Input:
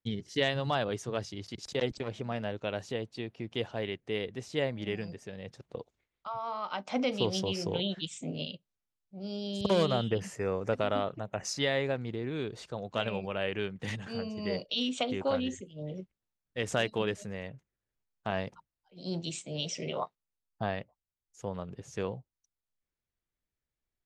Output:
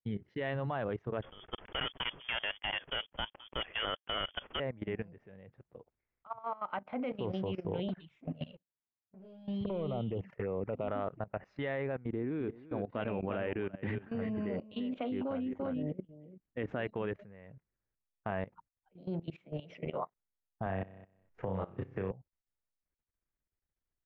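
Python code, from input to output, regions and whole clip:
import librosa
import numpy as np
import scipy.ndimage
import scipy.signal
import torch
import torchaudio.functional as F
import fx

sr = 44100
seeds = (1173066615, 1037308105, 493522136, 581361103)

y = fx.chain(x, sr, fx.leveller(passes=3),
    fx.freq_invert(carrier_hz=3400), at=(1.22, 4.6))
y = fx.chain(y, sr, fx.highpass(hz=89.0, slope=12),
    fx.leveller(passes=1),
    fx.env_flanger(rest_ms=10.1, full_db=-24.5), at=(7.88, 10.88))
y = fx.chain(y, sr, fx.peak_eq(hz=280.0, db=8.5, octaves=0.7),
    fx.echo_single(ms=341, db=-8.5), at=(12.06, 16.8))
y = fx.chain(y, sr, fx.high_shelf(hz=6300.0, db=-6.5),
    fx.room_flutter(wall_m=5.4, rt60_s=0.51),
    fx.band_squash(depth_pct=100), at=(20.66, 22.11))
y = scipy.signal.sosfilt(scipy.signal.butter(4, 2200.0, 'lowpass', fs=sr, output='sos'), y)
y = fx.low_shelf(y, sr, hz=62.0, db=4.5)
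y = fx.level_steps(y, sr, step_db=18)
y = y * librosa.db_to_amplitude(1.0)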